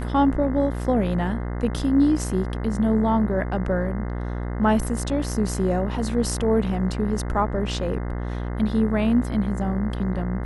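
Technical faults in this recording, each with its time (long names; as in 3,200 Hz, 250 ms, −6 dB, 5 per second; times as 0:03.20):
mains buzz 60 Hz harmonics 35 −28 dBFS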